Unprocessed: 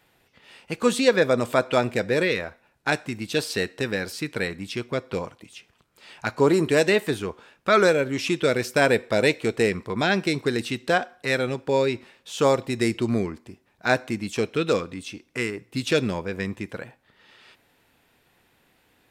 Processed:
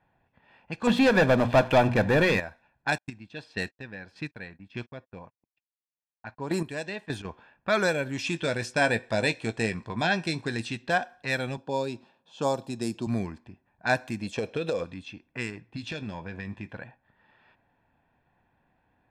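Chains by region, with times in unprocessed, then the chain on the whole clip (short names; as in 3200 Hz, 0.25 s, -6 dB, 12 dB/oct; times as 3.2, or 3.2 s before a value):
0.87–2.4 air absorption 340 m + notches 60/120/180/240 Hz + sample leveller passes 3
2.98–7.25 gate -40 dBFS, range -44 dB + chopper 1.7 Hz, depth 65%, duty 20%
8.23–10.77 LPF 10000 Hz 24 dB/oct + doubler 18 ms -11 dB
11.57–13.07 HPF 150 Hz + bell 2000 Hz -14.5 dB
14.21–14.84 bell 510 Hz +13 dB 0.66 oct + compressor 12:1, threshold -15 dBFS
15.52–16.77 compressor 4:1, threshold -27 dBFS + doubler 19 ms -11.5 dB
whole clip: comb 1.2 ms, depth 51%; low-pass opened by the level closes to 1400 Hz, open at -21 dBFS; gain -5 dB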